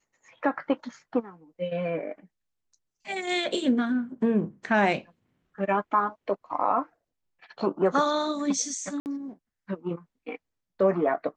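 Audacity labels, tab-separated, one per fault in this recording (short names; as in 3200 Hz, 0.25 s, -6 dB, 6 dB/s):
9.000000	9.060000	gap 59 ms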